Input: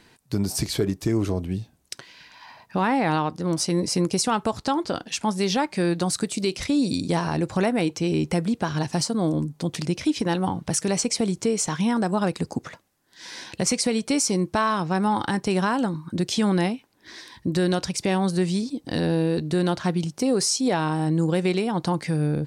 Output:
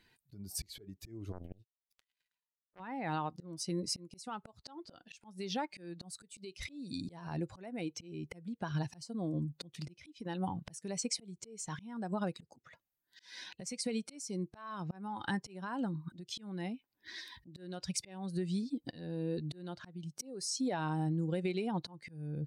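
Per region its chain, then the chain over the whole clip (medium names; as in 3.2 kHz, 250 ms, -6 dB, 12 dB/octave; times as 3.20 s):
1.32–2.80 s: power-law waveshaper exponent 3 + decay stretcher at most 71 dB/s
whole clip: expander on every frequency bin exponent 1.5; compression 10:1, threshold -38 dBFS; slow attack 398 ms; trim +6.5 dB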